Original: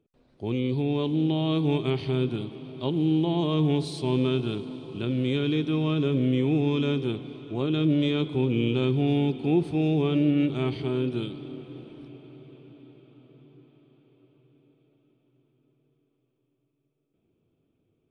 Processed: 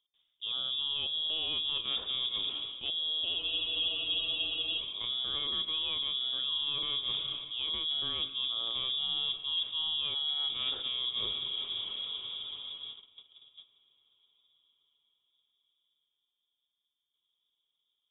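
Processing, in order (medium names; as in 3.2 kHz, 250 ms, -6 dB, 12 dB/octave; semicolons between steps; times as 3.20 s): gate -50 dBFS, range -17 dB; reverse; compression 6:1, threshold -39 dBFS, peak gain reduction 19 dB; reverse; overload inside the chain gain 32.5 dB; on a send at -19.5 dB: reverberation RT60 1.8 s, pre-delay 36 ms; on the sum: frequency inversion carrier 3.6 kHz; spectral freeze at 3.40 s, 1.39 s; trim +6.5 dB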